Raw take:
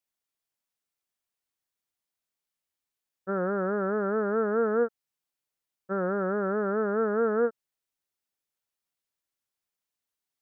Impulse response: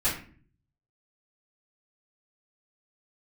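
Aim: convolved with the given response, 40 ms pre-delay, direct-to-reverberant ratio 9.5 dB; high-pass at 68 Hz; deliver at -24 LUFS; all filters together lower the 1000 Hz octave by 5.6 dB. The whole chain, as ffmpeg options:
-filter_complex "[0:a]highpass=68,equalizer=f=1k:t=o:g=-9,asplit=2[a][b];[1:a]atrim=start_sample=2205,adelay=40[c];[b][c]afir=irnorm=-1:irlink=0,volume=-19.5dB[d];[a][d]amix=inputs=2:normalize=0,volume=5dB"

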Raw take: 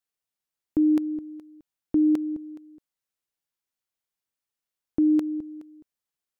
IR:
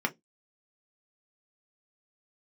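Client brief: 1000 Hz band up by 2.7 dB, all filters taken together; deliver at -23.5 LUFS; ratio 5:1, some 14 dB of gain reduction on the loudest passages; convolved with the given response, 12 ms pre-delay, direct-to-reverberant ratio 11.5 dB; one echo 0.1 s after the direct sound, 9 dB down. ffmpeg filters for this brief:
-filter_complex "[0:a]equalizer=f=1k:t=o:g=3.5,acompressor=threshold=-34dB:ratio=5,aecho=1:1:100:0.355,asplit=2[a][b];[1:a]atrim=start_sample=2205,adelay=12[c];[b][c]afir=irnorm=-1:irlink=0,volume=-19.5dB[d];[a][d]amix=inputs=2:normalize=0,volume=18dB"

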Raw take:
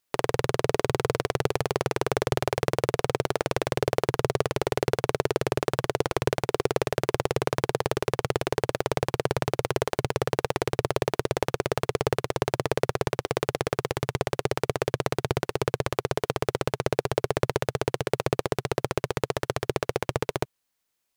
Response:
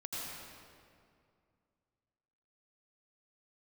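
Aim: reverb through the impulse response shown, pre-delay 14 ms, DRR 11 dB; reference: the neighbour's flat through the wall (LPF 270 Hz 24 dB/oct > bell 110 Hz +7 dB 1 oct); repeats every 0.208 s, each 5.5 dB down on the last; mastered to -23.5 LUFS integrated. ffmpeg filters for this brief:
-filter_complex "[0:a]aecho=1:1:208|416|624|832|1040|1248|1456:0.531|0.281|0.149|0.079|0.0419|0.0222|0.0118,asplit=2[a][b];[1:a]atrim=start_sample=2205,adelay=14[c];[b][c]afir=irnorm=-1:irlink=0,volume=-12.5dB[d];[a][d]amix=inputs=2:normalize=0,lowpass=f=270:w=0.5412,lowpass=f=270:w=1.3066,equalizer=f=110:t=o:w=1:g=7,volume=6dB"

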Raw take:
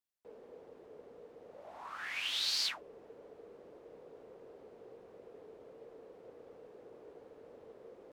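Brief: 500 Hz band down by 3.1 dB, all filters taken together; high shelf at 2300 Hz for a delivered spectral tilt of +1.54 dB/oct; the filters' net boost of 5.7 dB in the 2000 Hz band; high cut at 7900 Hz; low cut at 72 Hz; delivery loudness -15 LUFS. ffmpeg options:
-af "highpass=72,lowpass=7.9k,equalizer=f=500:t=o:g=-4,equalizer=f=2k:t=o:g=3.5,highshelf=f=2.3k:g=6.5,volume=14.5dB"

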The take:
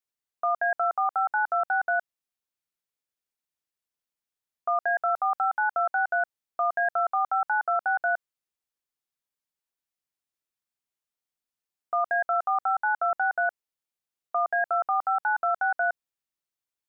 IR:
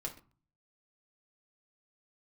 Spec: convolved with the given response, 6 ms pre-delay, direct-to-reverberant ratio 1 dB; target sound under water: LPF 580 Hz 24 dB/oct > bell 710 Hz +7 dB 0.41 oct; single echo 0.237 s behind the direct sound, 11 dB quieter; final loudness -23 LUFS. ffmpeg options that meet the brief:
-filter_complex "[0:a]aecho=1:1:237:0.282,asplit=2[a][b];[1:a]atrim=start_sample=2205,adelay=6[c];[b][c]afir=irnorm=-1:irlink=0,volume=-0.5dB[d];[a][d]amix=inputs=2:normalize=0,lowpass=f=580:w=0.5412,lowpass=f=580:w=1.3066,equalizer=f=710:t=o:w=0.41:g=7,volume=8.5dB"

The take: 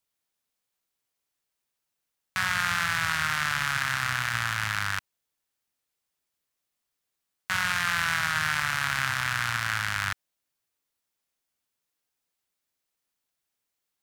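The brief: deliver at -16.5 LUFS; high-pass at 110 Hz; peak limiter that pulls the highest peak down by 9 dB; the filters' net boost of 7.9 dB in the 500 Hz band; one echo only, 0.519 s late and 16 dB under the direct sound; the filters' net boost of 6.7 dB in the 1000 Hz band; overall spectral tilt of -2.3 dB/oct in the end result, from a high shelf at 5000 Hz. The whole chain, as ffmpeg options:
-af "highpass=110,equalizer=f=500:t=o:g=7,equalizer=f=1k:t=o:g=8.5,highshelf=f=5k:g=-7.5,alimiter=limit=-17dB:level=0:latency=1,aecho=1:1:519:0.158,volume=12.5dB"

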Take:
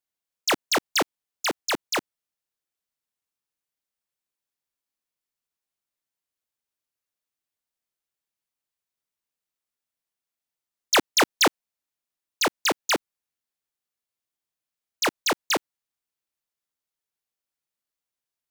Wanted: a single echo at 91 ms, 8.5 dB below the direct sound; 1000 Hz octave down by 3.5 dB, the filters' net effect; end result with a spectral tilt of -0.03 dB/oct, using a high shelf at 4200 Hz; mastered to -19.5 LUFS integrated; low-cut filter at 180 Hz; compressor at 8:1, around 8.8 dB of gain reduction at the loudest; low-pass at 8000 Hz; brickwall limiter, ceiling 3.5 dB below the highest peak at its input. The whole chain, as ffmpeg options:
-af "highpass=180,lowpass=8k,equalizer=f=1k:t=o:g=-4,highshelf=f=4.2k:g=-7,acompressor=threshold=-28dB:ratio=8,alimiter=level_in=1dB:limit=-24dB:level=0:latency=1,volume=-1dB,aecho=1:1:91:0.376,volume=13.5dB"

